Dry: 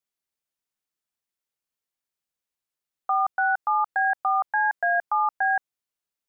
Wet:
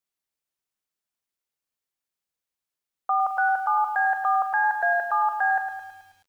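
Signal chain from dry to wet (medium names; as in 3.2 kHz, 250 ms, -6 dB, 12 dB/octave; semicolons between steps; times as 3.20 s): bit-crushed delay 108 ms, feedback 55%, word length 9-bit, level -8 dB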